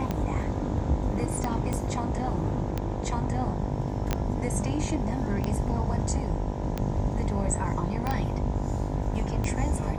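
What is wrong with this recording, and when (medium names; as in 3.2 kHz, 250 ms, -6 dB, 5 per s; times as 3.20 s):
buzz 50 Hz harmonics 20 -33 dBFS
tick 45 rpm -15 dBFS
1.73 s: pop -17 dBFS
4.13 s: pop -11 dBFS
8.07 s: pop -16 dBFS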